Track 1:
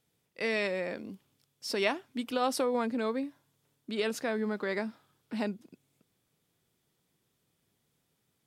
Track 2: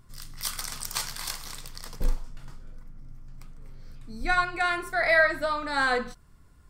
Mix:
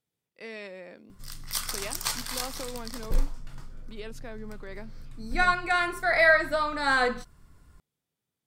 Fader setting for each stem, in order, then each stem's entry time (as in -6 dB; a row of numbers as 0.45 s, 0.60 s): -10.0 dB, +1.0 dB; 0.00 s, 1.10 s